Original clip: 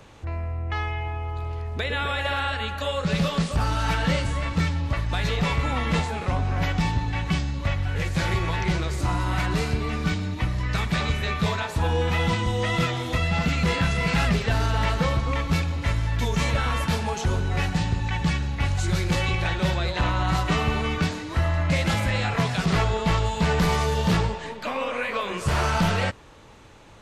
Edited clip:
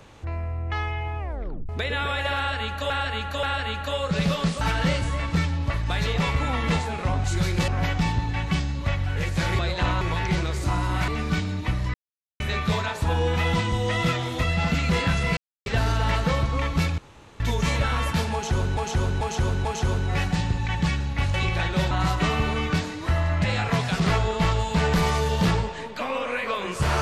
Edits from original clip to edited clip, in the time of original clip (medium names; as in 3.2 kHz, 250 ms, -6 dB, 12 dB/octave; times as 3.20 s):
1.19 s: tape stop 0.50 s
2.37–2.90 s: loop, 3 plays
3.55–3.84 s: delete
9.45–9.82 s: delete
10.68–11.14 s: mute
14.11–14.40 s: mute
15.72–16.14 s: room tone
17.07–17.51 s: loop, 4 plays
18.76–19.20 s: move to 6.47 s
19.77–20.19 s: move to 8.38 s
21.72–22.10 s: delete